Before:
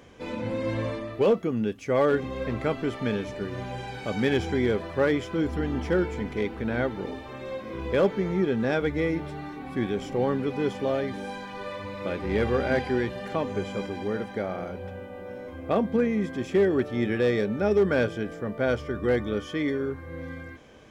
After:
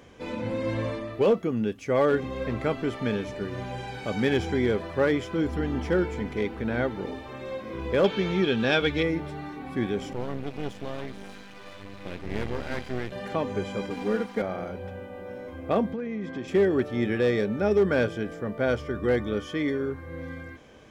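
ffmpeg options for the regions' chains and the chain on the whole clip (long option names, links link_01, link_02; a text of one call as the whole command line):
ffmpeg -i in.wav -filter_complex "[0:a]asettb=1/sr,asplit=3[link_01][link_02][link_03];[link_01]atrim=end=8.044[link_04];[link_02]atrim=start=8.04:end=9.03,asetpts=PTS-STARTPTS,afade=type=in:duration=0.004:curve=qsin,afade=type=out:start_time=0.986:duration=0.004:curve=qsin,equalizer=frequency=3200:width=0.83:gain=14,bandreject=frequency=2000:width=7.9[link_05];[link_03]atrim=start=9.026[link_06];[link_04][link_05]acrossfade=duration=0.004:curve1=hsin:curve2=qsin[link_07];[link_07][link_06]acrossfade=duration=0.004:curve1=qsin:curve2=hsin,asettb=1/sr,asplit=3[link_08][link_09][link_10];[link_08]atrim=end=10.134[link_11];[link_09]atrim=start=10.13:end=13.12,asetpts=PTS-STARTPTS,afade=type=in:duration=0.004:curve=qsin,afade=type=out:start_time=2.986:duration=0.004:curve=qsin,equalizer=frequency=770:width_type=o:width=1.8:gain=-8.5,aeval=exprs='max(val(0),0)':channel_layout=same[link_12];[link_10]atrim=start=13.116[link_13];[link_11][link_12]acrossfade=duration=0.004:curve1=hsin:curve2=qsin[link_14];[link_14][link_13]acrossfade=duration=0.004:curve1=qsin:curve2=hsin,asettb=1/sr,asplit=3[link_15][link_16][link_17];[link_15]atrim=end=13.904[link_18];[link_16]atrim=start=13.9:end=14.42,asetpts=PTS-STARTPTS,afade=type=in:duration=0.004:curve=qsin,afade=type=out:start_time=0.516:duration=0.004:curve=qsin,highpass=87,aeval=exprs='sgn(val(0))*max(abs(val(0))-0.00596,0)':channel_layout=same,aecho=1:1:4.2:0.98,atrim=end_sample=22932[link_19];[link_17]atrim=start=14.416[link_20];[link_18][link_19]acrossfade=duration=0.004:curve1=hsin:curve2=qsin[link_21];[link_21][link_20]acrossfade=duration=0.004:curve1=qsin:curve2=hsin,asettb=1/sr,asplit=3[link_22][link_23][link_24];[link_22]atrim=end=15.934[link_25];[link_23]atrim=start=15.93:end=16.48,asetpts=PTS-STARTPTS,afade=type=in:duration=0.004:curve=qsin,afade=type=out:start_time=0.546:duration=0.004:curve=qsin,highpass=110,lowpass=4900,acompressor=threshold=-28dB:ratio=10:attack=3.2:release=140:knee=1:detection=peak[link_26];[link_24]atrim=start=16.476[link_27];[link_25][link_26]acrossfade=duration=0.004:curve1=hsin:curve2=qsin[link_28];[link_28][link_27]acrossfade=duration=0.004:curve1=qsin:curve2=hsin" out.wav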